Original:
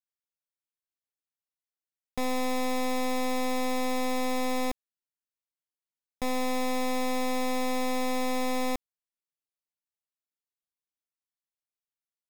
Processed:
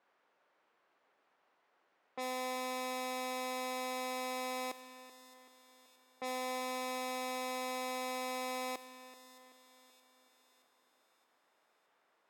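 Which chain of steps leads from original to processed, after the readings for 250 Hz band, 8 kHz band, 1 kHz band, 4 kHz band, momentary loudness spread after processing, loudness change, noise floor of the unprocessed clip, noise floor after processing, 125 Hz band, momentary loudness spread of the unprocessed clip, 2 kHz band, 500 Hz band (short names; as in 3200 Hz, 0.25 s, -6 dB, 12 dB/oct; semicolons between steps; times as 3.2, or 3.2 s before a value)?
-15.5 dB, -6.5 dB, -7.0 dB, -6.0 dB, 16 LU, -8.5 dB, under -85 dBFS, -76 dBFS, n/a, 4 LU, -6.5 dB, -9.0 dB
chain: zero-crossing step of -45 dBFS; HPF 420 Hz 12 dB/oct; low-pass opened by the level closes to 1100 Hz, open at -30 dBFS; split-band echo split 2900 Hz, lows 0.381 s, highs 0.621 s, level -15 dB; spring tank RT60 2.9 s, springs 31/54 ms, chirp 50 ms, DRR 17.5 dB; gain -7 dB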